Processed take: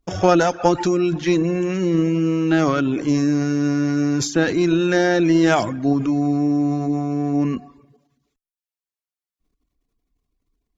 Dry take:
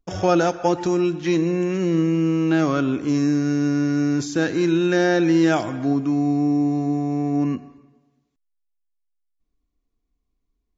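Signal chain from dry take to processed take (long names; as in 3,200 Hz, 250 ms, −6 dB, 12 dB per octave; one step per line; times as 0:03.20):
transient designer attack +1 dB, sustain +7 dB
reverb reduction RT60 0.64 s
harmonic generator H 2 −16 dB, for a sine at −5.5 dBFS
level +2.5 dB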